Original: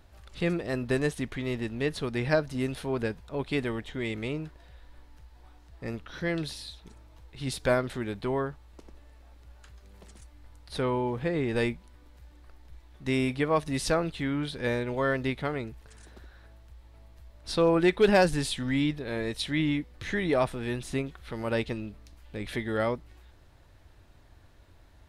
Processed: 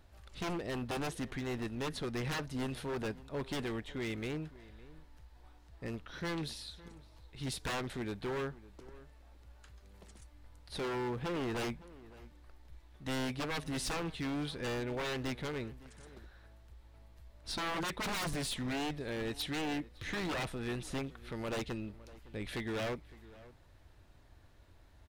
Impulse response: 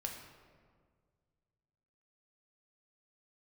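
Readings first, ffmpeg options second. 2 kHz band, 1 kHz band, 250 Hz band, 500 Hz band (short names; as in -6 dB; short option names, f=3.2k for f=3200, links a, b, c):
-7.5 dB, -7.0 dB, -9.0 dB, -11.5 dB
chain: -filter_complex "[0:a]aeval=exprs='0.0473*(abs(mod(val(0)/0.0473+3,4)-2)-1)':c=same,asplit=2[a][b];[b]adelay=559.8,volume=-19dB,highshelf=f=4k:g=-12.6[c];[a][c]amix=inputs=2:normalize=0,volume=-4.5dB"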